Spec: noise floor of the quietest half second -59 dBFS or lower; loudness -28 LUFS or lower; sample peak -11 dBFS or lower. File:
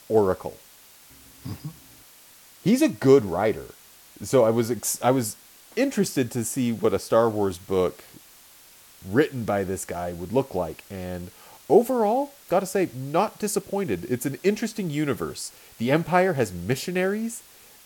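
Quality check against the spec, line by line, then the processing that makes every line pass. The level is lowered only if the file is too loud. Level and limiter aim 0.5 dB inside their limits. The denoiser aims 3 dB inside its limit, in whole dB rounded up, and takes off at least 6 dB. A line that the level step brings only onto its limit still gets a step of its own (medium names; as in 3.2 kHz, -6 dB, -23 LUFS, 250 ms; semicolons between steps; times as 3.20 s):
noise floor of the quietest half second -51 dBFS: fail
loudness -24.5 LUFS: fail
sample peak -4.5 dBFS: fail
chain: noise reduction 7 dB, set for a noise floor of -51 dBFS; trim -4 dB; peak limiter -11.5 dBFS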